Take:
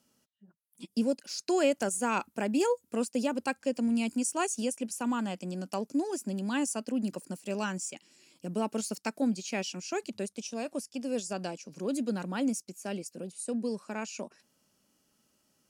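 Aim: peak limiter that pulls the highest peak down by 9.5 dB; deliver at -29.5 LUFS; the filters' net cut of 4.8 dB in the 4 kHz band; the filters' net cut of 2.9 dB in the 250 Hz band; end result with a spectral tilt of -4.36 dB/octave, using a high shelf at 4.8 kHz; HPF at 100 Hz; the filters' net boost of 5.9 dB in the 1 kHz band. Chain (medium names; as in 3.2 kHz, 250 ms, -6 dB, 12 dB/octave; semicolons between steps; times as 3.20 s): high-pass 100 Hz; peaking EQ 250 Hz -3.5 dB; peaking EQ 1 kHz +8 dB; peaking EQ 4 kHz -6 dB; treble shelf 4.8 kHz -3 dB; trim +5 dB; peak limiter -16.5 dBFS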